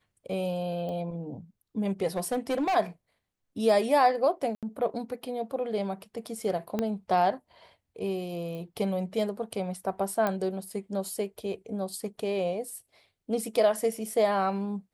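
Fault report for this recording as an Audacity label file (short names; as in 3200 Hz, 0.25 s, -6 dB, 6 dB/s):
0.890000	0.890000	pop -27 dBFS
2.170000	2.760000	clipped -23.5 dBFS
4.550000	4.630000	gap 77 ms
6.790000	6.790000	pop -16 dBFS
8.550000	8.550000	pop -29 dBFS
10.270000	10.270000	pop -15 dBFS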